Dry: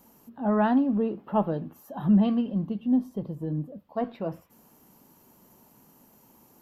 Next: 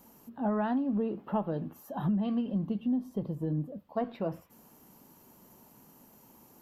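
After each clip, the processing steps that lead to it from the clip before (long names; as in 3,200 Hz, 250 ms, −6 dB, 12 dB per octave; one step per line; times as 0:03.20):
downward compressor 12 to 1, threshold −26 dBFS, peak gain reduction 11 dB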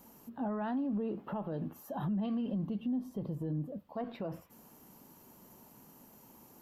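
brickwall limiter −28.5 dBFS, peak gain reduction 9.5 dB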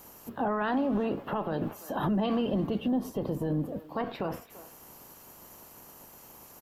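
ceiling on every frequency bin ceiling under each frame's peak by 14 dB
far-end echo of a speakerphone 340 ms, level −16 dB
level +6.5 dB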